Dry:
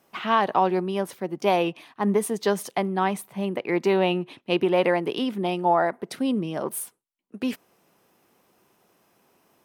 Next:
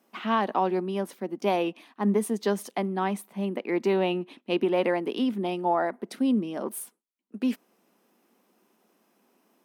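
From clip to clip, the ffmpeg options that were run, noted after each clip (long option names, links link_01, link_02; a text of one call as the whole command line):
ffmpeg -i in.wav -af "lowshelf=frequency=160:width_type=q:width=3:gain=-11,volume=-5dB" out.wav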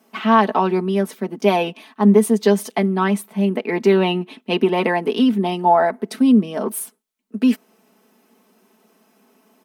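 ffmpeg -i in.wav -af "aecho=1:1:4.6:0.68,volume=7.5dB" out.wav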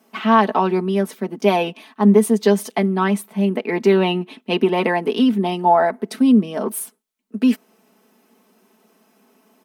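ffmpeg -i in.wav -af anull out.wav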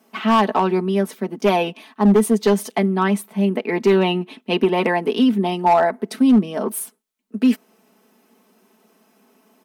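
ffmpeg -i in.wav -af "asoftclip=type=hard:threshold=-8.5dB" out.wav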